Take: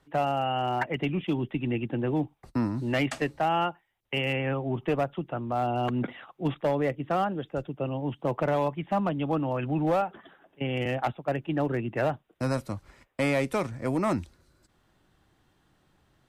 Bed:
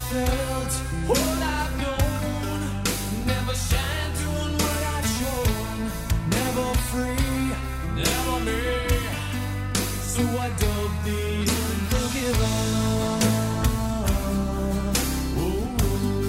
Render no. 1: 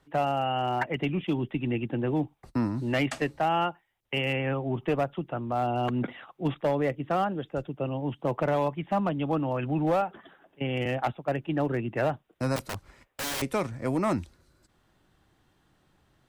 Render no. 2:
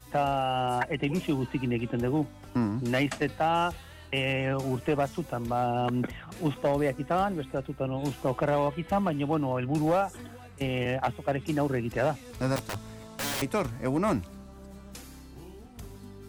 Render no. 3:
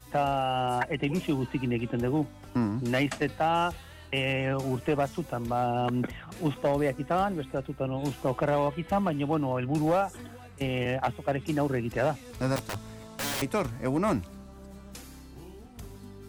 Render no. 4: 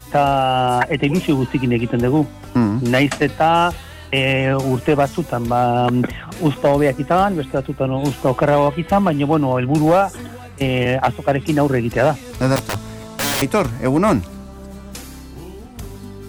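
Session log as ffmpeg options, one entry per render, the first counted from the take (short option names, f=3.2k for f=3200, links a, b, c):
-filter_complex "[0:a]asettb=1/sr,asplit=3[a][b][c];[a]atrim=end=12.564[d];[b]atrim=start=12.56:end=13.42,asetpts=PTS-STARTPTS,afade=t=in:d=0.004:c=qsin,afade=t=out:st=0.856:d=0.004:c=qsin,aeval=exprs='(mod(22.4*val(0)+1,2)-1)/22.4':c=same[e];[c]atrim=start=13.416[f];[d][e]acrossfade=d=0.004:c1=hsin:c2=qsin[g];[g][f]acrossfade=d=0.004:c1=qsin:c2=hsin"
-filter_complex "[1:a]volume=-21.5dB[a];[0:a][a]amix=inputs=2:normalize=0"
-af anull
-af "volume=11.5dB"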